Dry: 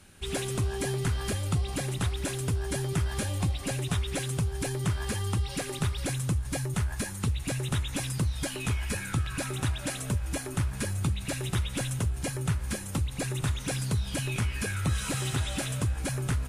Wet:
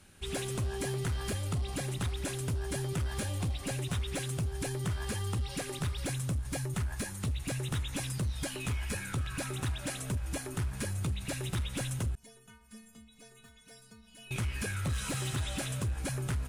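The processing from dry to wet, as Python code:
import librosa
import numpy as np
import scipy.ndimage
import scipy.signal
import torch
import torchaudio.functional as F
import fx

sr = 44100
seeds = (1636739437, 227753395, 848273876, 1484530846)

y = np.clip(x, -10.0 ** (-24.5 / 20.0), 10.0 ** (-24.5 / 20.0))
y = fx.stiff_resonator(y, sr, f0_hz=220.0, decay_s=0.51, stiffness=0.008, at=(12.15, 14.31))
y = y * librosa.db_to_amplitude(-3.5)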